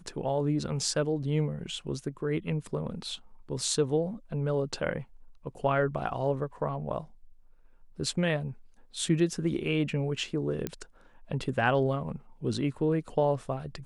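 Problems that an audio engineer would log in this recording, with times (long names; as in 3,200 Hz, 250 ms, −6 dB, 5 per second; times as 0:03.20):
0:10.67: click −17 dBFS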